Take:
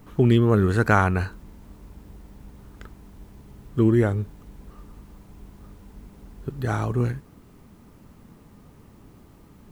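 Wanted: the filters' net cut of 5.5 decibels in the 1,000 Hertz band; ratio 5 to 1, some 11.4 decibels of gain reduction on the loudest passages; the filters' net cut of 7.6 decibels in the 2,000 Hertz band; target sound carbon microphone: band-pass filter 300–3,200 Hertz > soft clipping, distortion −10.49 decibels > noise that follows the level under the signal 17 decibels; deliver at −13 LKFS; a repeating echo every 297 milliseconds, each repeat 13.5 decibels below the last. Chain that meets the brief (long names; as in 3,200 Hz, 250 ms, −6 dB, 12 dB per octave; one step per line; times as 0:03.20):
parametric band 1,000 Hz −4.5 dB
parametric band 2,000 Hz −9 dB
downward compressor 5 to 1, threshold −27 dBFS
band-pass filter 300–3,200 Hz
repeating echo 297 ms, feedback 21%, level −13.5 dB
soft clipping −32 dBFS
noise that follows the level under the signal 17 dB
level +29 dB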